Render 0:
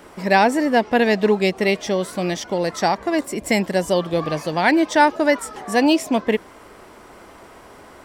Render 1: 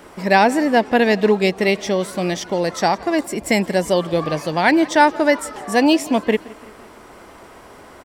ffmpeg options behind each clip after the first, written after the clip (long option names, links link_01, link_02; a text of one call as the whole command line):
ffmpeg -i in.wav -af "aecho=1:1:170|340|510|680:0.0794|0.0405|0.0207|0.0105,volume=1.5dB" out.wav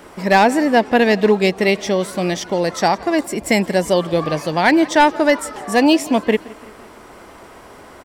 ffmpeg -i in.wav -af "aeval=exprs='clip(val(0),-1,0.422)':channel_layout=same,volume=1.5dB" out.wav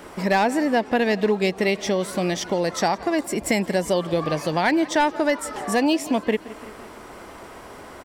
ffmpeg -i in.wav -af "acompressor=threshold=-22dB:ratio=2" out.wav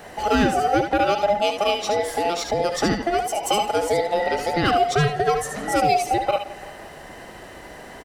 ffmpeg -i in.wav -filter_complex "[0:a]afftfilt=real='real(if(between(b,1,1008),(2*floor((b-1)/48)+1)*48-b,b),0)':imag='imag(if(between(b,1,1008),(2*floor((b-1)/48)+1)*48-b,b),0)*if(between(b,1,1008),-1,1)':win_size=2048:overlap=0.75,asplit=2[link_01][link_02];[link_02]aecho=0:1:70|74:0.299|0.376[link_03];[link_01][link_03]amix=inputs=2:normalize=0" out.wav